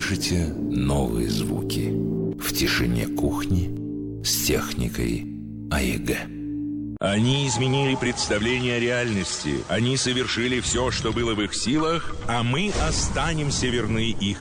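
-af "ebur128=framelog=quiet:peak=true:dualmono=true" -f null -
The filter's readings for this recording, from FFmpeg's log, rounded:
Integrated loudness:
  I:         -20.9 LUFS
  Threshold: -31.0 LUFS
Loudness range:
  LRA:         2.6 LU
  Threshold: -41.0 LUFS
  LRA low:   -22.4 LUFS
  LRA high:  -19.9 LUFS
True peak:
  Peak:      -12.5 dBFS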